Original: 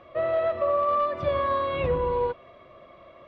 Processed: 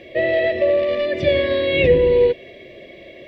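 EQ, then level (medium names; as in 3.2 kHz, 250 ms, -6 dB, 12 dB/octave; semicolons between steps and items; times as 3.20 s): FFT filter 110 Hz 0 dB, 260 Hz +5 dB, 400 Hz +10 dB, 690 Hz -3 dB, 1.3 kHz -25 dB, 1.8 kHz +9 dB; +7.0 dB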